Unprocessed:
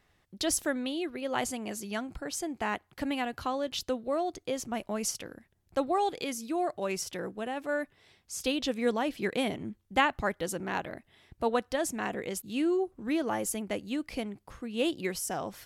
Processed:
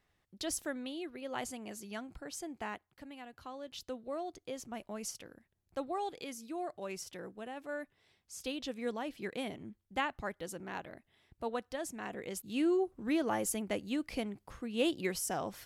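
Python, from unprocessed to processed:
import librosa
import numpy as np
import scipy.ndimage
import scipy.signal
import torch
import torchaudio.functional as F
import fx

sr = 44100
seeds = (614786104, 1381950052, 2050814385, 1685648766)

y = fx.gain(x, sr, db=fx.line((2.64, -8.0), (3.09, -18.0), (4.03, -9.0), (12.02, -9.0), (12.65, -2.0)))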